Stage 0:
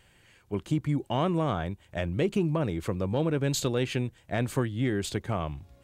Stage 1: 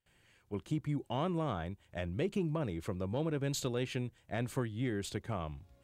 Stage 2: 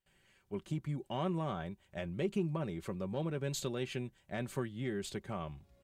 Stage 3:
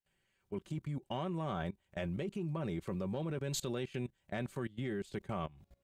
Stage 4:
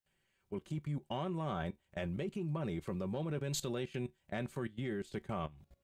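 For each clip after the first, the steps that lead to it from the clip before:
gate with hold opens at -50 dBFS; gain -7.5 dB
comb 5.2 ms, depth 46%; gain -2.5 dB
level quantiser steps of 21 dB; gain +5 dB
resonator 74 Hz, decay 0.17 s, harmonics all, mix 40%; gain +2 dB

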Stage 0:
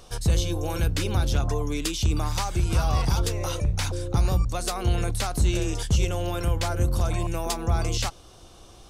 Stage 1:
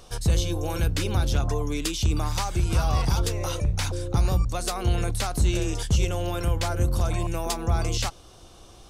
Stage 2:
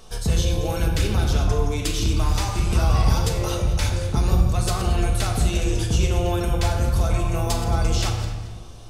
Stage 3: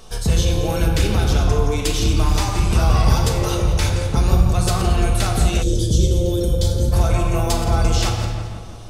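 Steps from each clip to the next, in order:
nothing audible
regenerating reverse delay 0.113 s, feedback 46%, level -11.5 dB; shoebox room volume 1000 m³, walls mixed, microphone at 1.5 m
tape echo 0.168 s, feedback 66%, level -8 dB, low-pass 2400 Hz; spectral gain 5.63–6.92, 610–3000 Hz -17 dB; gain +3.5 dB

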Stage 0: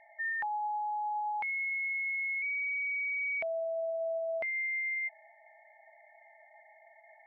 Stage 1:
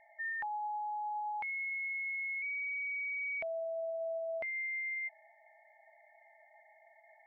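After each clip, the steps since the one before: low shelf 160 Hz +5.5 dB; gain -4 dB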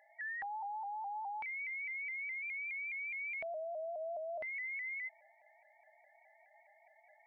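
shaped vibrato saw up 4.8 Hz, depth 100 cents; gain -3.5 dB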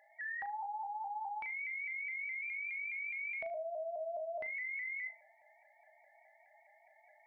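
flutter echo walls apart 6.5 m, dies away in 0.25 s

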